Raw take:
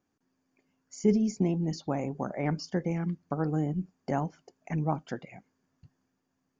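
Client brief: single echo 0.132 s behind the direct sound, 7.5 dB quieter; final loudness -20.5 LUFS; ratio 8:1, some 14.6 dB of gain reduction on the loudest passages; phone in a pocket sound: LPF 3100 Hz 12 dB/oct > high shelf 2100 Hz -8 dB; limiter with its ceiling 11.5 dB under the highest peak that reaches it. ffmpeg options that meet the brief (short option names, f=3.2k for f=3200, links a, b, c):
-af "acompressor=threshold=-34dB:ratio=8,alimiter=level_in=10.5dB:limit=-24dB:level=0:latency=1,volume=-10.5dB,lowpass=3.1k,highshelf=f=2.1k:g=-8,aecho=1:1:132:0.422,volume=23.5dB"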